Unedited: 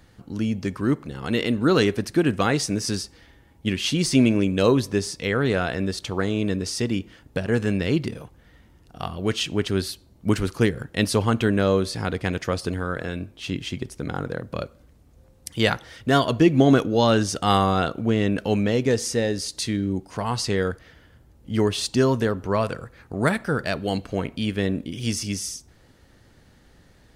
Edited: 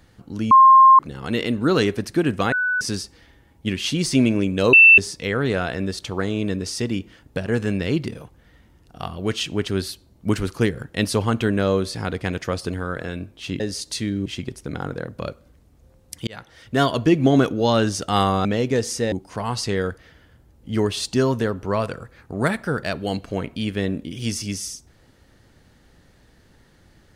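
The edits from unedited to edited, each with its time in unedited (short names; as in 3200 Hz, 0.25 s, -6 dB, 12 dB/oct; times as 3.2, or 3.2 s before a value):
0.51–0.99 bleep 1060 Hz -6.5 dBFS
2.52–2.81 bleep 1490 Hz -18.5 dBFS
4.73–4.98 bleep 2670 Hz -6 dBFS
15.61–16.12 fade in
17.79–18.6 cut
19.27–19.93 move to 13.6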